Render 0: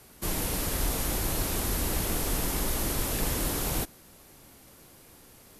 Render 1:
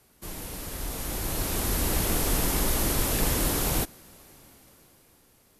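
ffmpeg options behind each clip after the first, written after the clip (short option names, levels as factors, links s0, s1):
-af "dynaudnorm=f=210:g=13:m=4.22,volume=0.398"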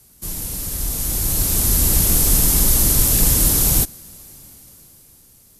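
-af "bass=f=250:g=10,treble=f=4000:g=14"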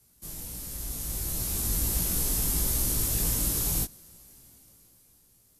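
-af "flanger=delay=16.5:depth=2.2:speed=1.4,volume=0.376"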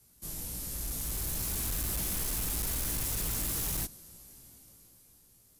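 -af "asoftclip=type=hard:threshold=0.0282"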